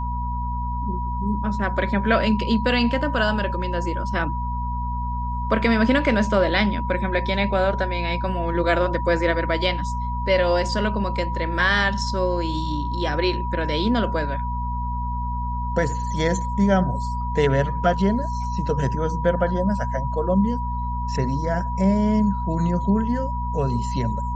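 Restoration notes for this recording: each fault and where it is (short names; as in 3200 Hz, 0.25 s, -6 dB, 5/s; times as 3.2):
hum 60 Hz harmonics 4 -27 dBFS
tone 970 Hz -28 dBFS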